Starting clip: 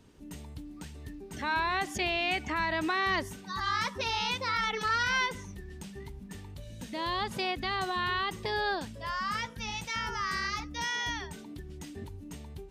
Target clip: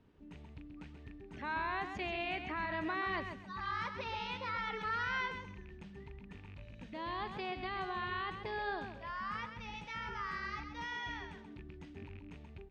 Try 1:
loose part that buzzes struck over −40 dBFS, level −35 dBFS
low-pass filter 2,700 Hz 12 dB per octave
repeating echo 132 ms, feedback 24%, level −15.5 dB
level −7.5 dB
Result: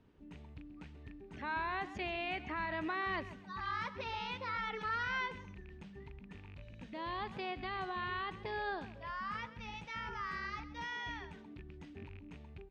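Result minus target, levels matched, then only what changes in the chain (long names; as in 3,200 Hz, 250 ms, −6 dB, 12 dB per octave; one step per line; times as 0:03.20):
echo-to-direct −7.5 dB
change: repeating echo 132 ms, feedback 24%, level −8 dB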